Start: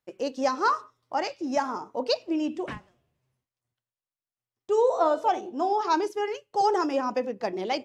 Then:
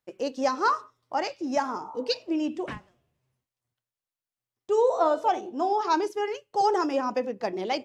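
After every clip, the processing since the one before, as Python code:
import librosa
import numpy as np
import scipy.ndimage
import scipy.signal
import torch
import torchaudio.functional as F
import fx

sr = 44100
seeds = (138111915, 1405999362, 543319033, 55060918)

y = fx.spec_repair(x, sr, seeds[0], start_s=1.87, length_s=0.27, low_hz=530.0, high_hz=1400.0, source='both')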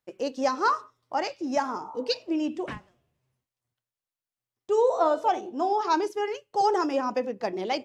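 y = x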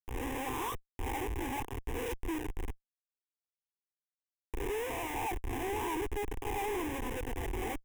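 y = fx.spec_swells(x, sr, rise_s=1.08)
y = fx.schmitt(y, sr, flips_db=-23.0)
y = fx.fixed_phaser(y, sr, hz=900.0, stages=8)
y = F.gain(torch.from_numpy(y), -8.0).numpy()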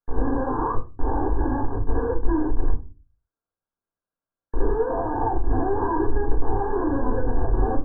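y = fx.brickwall_lowpass(x, sr, high_hz=1700.0)
y = fx.room_shoebox(y, sr, seeds[1], volume_m3=120.0, walls='furnished', distance_m=1.7)
y = F.gain(torch.from_numpy(y), 7.5).numpy()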